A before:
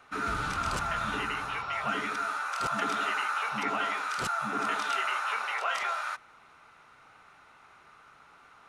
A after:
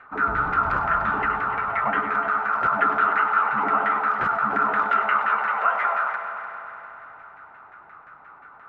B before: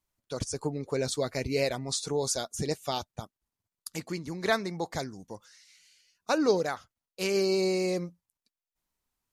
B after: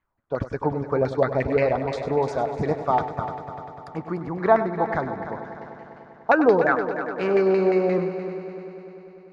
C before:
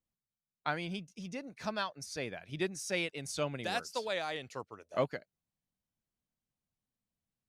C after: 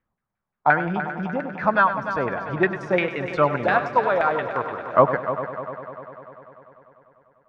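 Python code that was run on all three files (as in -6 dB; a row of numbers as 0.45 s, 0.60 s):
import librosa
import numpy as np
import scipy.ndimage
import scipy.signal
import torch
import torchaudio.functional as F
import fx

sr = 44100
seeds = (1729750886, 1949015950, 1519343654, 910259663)

y = fx.filter_lfo_lowpass(x, sr, shape='saw_down', hz=5.7, low_hz=730.0, high_hz=1900.0, q=3.1)
y = fx.echo_heads(y, sr, ms=99, heads='first and third', feedback_pct=68, wet_db=-12)
y = y * 10.0 ** (-24 / 20.0) / np.sqrt(np.mean(np.square(y)))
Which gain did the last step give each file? +3.0 dB, +5.5 dB, +12.0 dB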